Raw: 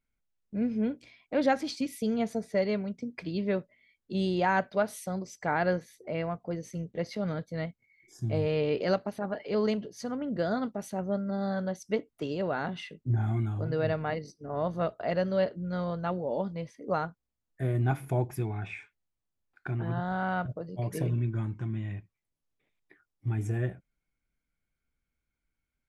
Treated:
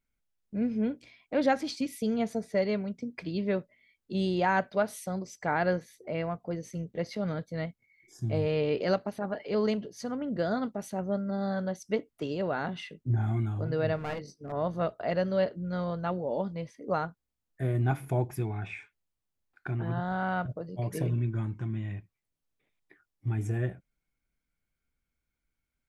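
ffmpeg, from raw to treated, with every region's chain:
-filter_complex "[0:a]asettb=1/sr,asplit=3[a][b][c];[a]atrim=end=13.964[d];[b]atrim=start=13.96:end=14.52,asetpts=PTS-STARTPTS,afade=t=in:d=0.004:c=qsin,afade=t=out:st=0.556:d=0.004:c=qsin,asplit=2[e][f];[f]adelay=22,volume=-10dB[g];[e][g]amix=inputs=2:normalize=0,atrim=end_sample=24696,aeval=exprs='clip(val(0),-1,0.02)':c=same[h];[c]atrim=start=14.516[i];[d][h]acrossfade=d=0.004:c1=hsin:c2=qsin[j];[j][i]acrossfade=d=0.004:c1=qsin:c2=hsin"

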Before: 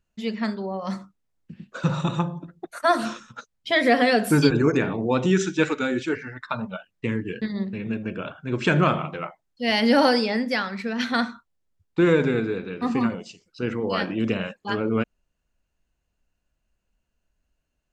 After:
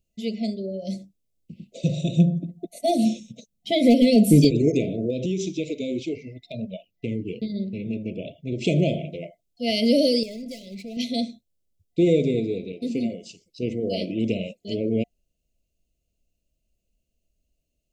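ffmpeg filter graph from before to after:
-filter_complex "[0:a]asettb=1/sr,asplit=3[a][b][c];[a]atrim=end=2.174[d];[b]atrim=start=2.17:end=4.45,asetpts=PTS-STARTPTS,afade=t=in:d=0.004:c=qsin,afade=t=out:st=2.276:d=0.004:c=qsin,equalizer=f=200:t=o:w=0.82:g=12.5,aeval=exprs='clip(val(0),-1,0.355)':c=same,bandreject=f=4.9k:w=13[e];[c]atrim=start=4.446[f];[d][e]acrossfade=d=0.004:c1=hsin:c2=qsin[g];[g][f]acrossfade=d=0.004:c1=qsin:c2=hsin,asettb=1/sr,asplit=3[h][i][j];[h]atrim=end=5.104[k];[i]atrim=start=5.1:end=8.61,asetpts=PTS-STARTPTS,afade=t=in:d=0.004:c=qsin,afade=t=out:st=3.506:d=0.004:c=qsin,equalizer=f=8.5k:t=o:w=0.56:g=-10,acompressor=threshold=-22dB:ratio=4:attack=3.2:release=140:knee=1:detection=peak[l];[j]atrim=start=8.606[m];[k][l]acrossfade=d=0.004:c1=hsin:c2=qsin[n];[n][m]acrossfade=d=0.004:c1=qsin:c2=hsin,asettb=1/sr,asplit=3[o][p][q];[o]atrim=end=10.234[r];[p]atrim=start=10.23:end=10.97,asetpts=PTS-STARTPTS,afade=t=in:d=0.004:c=qsin,afade=t=out:st=0.736:d=0.004:c=qsin,agate=range=-33dB:threshold=-32dB:ratio=3:release=100:detection=peak,acompressor=threshold=-30dB:ratio=5:attack=3.2:release=140:knee=1:detection=peak,asoftclip=type=hard:threshold=-31.5dB[s];[q]atrim=start=10.966[t];[r][s]acrossfade=d=0.004:c1=hsin:c2=qsin[u];[u][t]acrossfade=d=0.004:c1=qsin:c2=hsin,asettb=1/sr,asplit=3[v][w][x];[v]atrim=end=12.724[y];[w]atrim=start=12.72:end=13.23,asetpts=PTS-STARTPTS,afade=t=in:d=0.004:c=qsin,afade=t=out:st=0.506:d=0.004:c=qsin,highpass=f=220:p=1,agate=range=-33dB:threshold=-34dB:ratio=3:release=100:detection=peak[z];[x]atrim=start=13.226[aa];[y][z]acrossfade=d=0.004:c1=hsin:c2=qsin[ab];[ab][aa]acrossfade=d=0.004:c1=qsin:c2=hsin,equalizer=f=2.1k:w=2.3:g=-8,afftfilt=real='re*(1-between(b*sr/4096,710,2000))':imag='im*(1-between(b*sr/4096,710,2000))':win_size=4096:overlap=0.75,highshelf=f=9k:g=6.5"

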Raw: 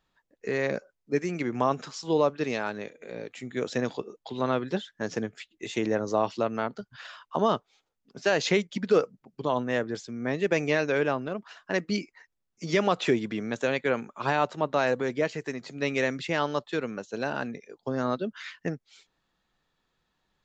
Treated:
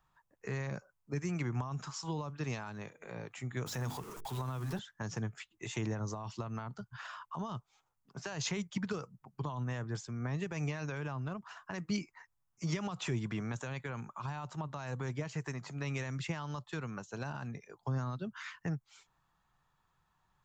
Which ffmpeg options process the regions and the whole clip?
-filter_complex "[0:a]asettb=1/sr,asplit=3[a][b][c];[a]atrim=end=3.664[d];[b]atrim=start=3.66:end=4.79,asetpts=PTS-STARTPTS,afade=t=in:d=0.004:c=qsin,afade=t=out:st=1.126:d=0.004:c=qsin,aeval=exprs='val(0)+0.5*0.0119*sgn(val(0))':c=same,bandreject=f=50:t=h:w=6,bandreject=f=100:t=h:w=6,bandreject=f=150:t=h:w=6,bandreject=f=200:t=h:w=6,bandreject=f=250:t=h:w=6,bandreject=f=300:t=h:w=6,bandreject=f=350:t=h:w=6,bandreject=f=400:t=h:w=6,bandreject=f=450:t=h:w=6,acompressor=threshold=-29dB:ratio=2:attack=3.2:release=140:knee=1:detection=peak[e];[c]atrim=start=4.786[f];[d][e]acrossfade=d=0.004:c1=hsin:c2=qsin[g];[g][f]acrossfade=d=0.004:c1=qsin:c2=hsin,equalizer=f=125:t=o:w=1:g=7,equalizer=f=250:t=o:w=1:g=-9,equalizer=f=500:t=o:w=1:g=-9,equalizer=f=1k:t=o:w=1:g=8,equalizer=f=2k:t=o:w=1:g=-4,equalizer=f=4k:t=o:w=1:g=-9,alimiter=limit=-23dB:level=0:latency=1:release=50,acrossover=split=290|3000[h][i][j];[i]acompressor=threshold=-43dB:ratio=6[k];[h][k][j]amix=inputs=3:normalize=0,volume=1dB"

